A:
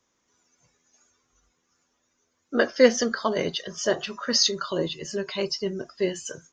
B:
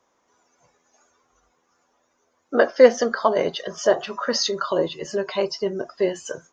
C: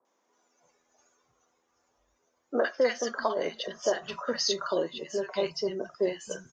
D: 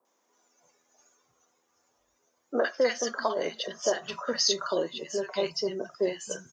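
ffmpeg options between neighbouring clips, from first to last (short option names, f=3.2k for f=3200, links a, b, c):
-filter_complex "[0:a]equalizer=f=750:t=o:w=2.2:g=14,asplit=2[a][b];[b]acompressor=threshold=-22dB:ratio=6,volume=-3dB[c];[a][c]amix=inputs=2:normalize=0,volume=-6.5dB"
-filter_complex "[0:a]acrossover=split=980[a][b];[a]alimiter=limit=-12.5dB:level=0:latency=1:release=494[c];[c][b]amix=inputs=2:normalize=0,acrossover=split=160|1300[d][e][f];[f]adelay=50[g];[d]adelay=650[h];[h][e][g]amix=inputs=3:normalize=0,volume=-5dB"
-af "highpass=83,highshelf=f=6.1k:g=9"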